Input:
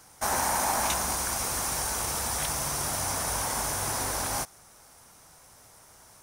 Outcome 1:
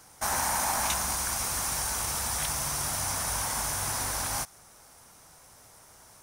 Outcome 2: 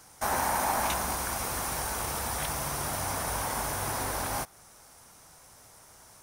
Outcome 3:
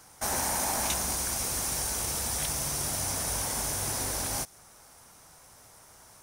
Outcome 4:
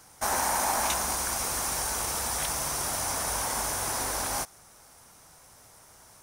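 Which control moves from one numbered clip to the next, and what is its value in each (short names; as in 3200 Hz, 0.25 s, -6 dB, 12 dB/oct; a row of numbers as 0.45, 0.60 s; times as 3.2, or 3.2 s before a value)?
dynamic EQ, frequency: 410, 6800, 1100, 120 Hz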